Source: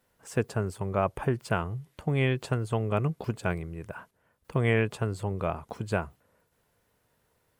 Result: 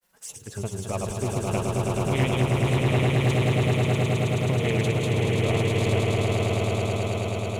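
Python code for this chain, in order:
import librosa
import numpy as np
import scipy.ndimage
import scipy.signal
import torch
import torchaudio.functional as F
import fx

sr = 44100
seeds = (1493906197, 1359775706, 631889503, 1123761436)

p1 = fx.high_shelf(x, sr, hz=2100.0, db=11.5)
p2 = np.clip(p1, -10.0 ** (-30.5 / 20.0), 10.0 ** (-30.5 / 20.0))
p3 = p1 + F.gain(torch.from_numpy(p2), -5.0).numpy()
p4 = fx.granulator(p3, sr, seeds[0], grain_ms=100.0, per_s=20.0, spray_ms=100.0, spread_st=0)
p5 = fx.env_flanger(p4, sr, rest_ms=5.9, full_db=-30.0)
p6 = p5 + fx.echo_swell(p5, sr, ms=107, loudest=8, wet_db=-4.0, dry=0)
p7 = fx.doppler_dist(p6, sr, depth_ms=0.33)
y = F.gain(torch.from_numpy(p7), -2.5).numpy()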